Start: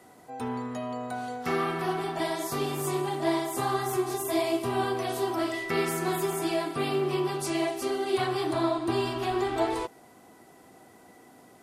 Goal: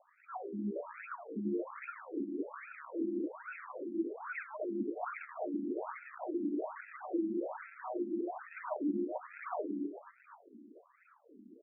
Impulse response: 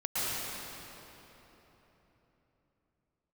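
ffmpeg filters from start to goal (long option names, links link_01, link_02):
-filter_complex "[0:a]asettb=1/sr,asplit=3[link_01][link_02][link_03];[link_01]atrim=end=3.854[link_04];[link_02]atrim=start=3.85:end=5.3,asetpts=PTS-STARTPTS,afade=type=in:duration=0.004:curve=qsin,afade=type=out:start_time=1.446:duration=0.004:curve=qsin,aecho=1:1:1.6:0.52,atrim=end_sample=63945[link_05];[link_03]atrim=start=5.296[link_06];[link_04][link_05]acrossfade=duration=0.004:curve1=hsin:curve2=qsin[link_07];[link_07][link_06]acrossfade=duration=0.004:curve1=qsin:curve2=hsin,acompressor=threshold=-31dB:ratio=6,asplit=2[link_08][link_09];[link_09]adelay=243,lowpass=frequency=1800:poles=1,volume=-6dB,asplit=2[link_10][link_11];[link_11]adelay=243,lowpass=frequency=1800:poles=1,volume=0.33,asplit=2[link_12][link_13];[link_13]adelay=243,lowpass=frequency=1800:poles=1,volume=0.33,asplit=2[link_14][link_15];[link_15]adelay=243,lowpass=frequency=1800:poles=1,volume=0.33[link_16];[link_08][link_10][link_12][link_14][link_16]amix=inputs=5:normalize=0,afreqshift=-41,acrossover=split=380[link_17][link_18];[link_18]acrusher=samples=41:mix=1:aa=0.000001:lfo=1:lforange=41:lforate=2.5[link_19];[link_17][link_19]amix=inputs=2:normalize=0,afftfilt=real='re*between(b*sr/1024,250*pow(1900/250,0.5+0.5*sin(2*PI*1.2*pts/sr))/1.41,250*pow(1900/250,0.5+0.5*sin(2*PI*1.2*pts/sr))*1.41)':imag='im*between(b*sr/1024,250*pow(1900/250,0.5+0.5*sin(2*PI*1.2*pts/sr))/1.41,250*pow(1900/250,0.5+0.5*sin(2*PI*1.2*pts/sr))*1.41)':win_size=1024:overlap=0.75,volume=2.5dB"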